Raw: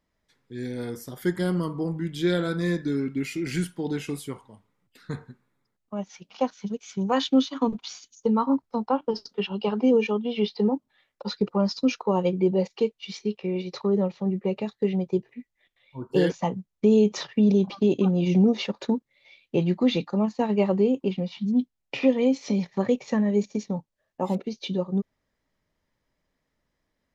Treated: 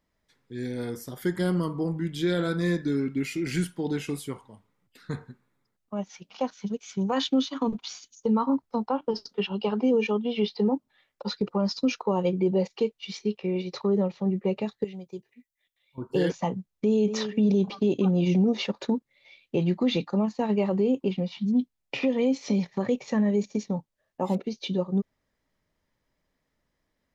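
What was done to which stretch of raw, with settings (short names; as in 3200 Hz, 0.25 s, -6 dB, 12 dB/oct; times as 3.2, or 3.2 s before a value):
14.84–15.98 pre-emphasis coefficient 0.8
16.7–17.13 echo throw 0.24 s, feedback 30%, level -14 dB
whole clip: limiter -15.5 dBFS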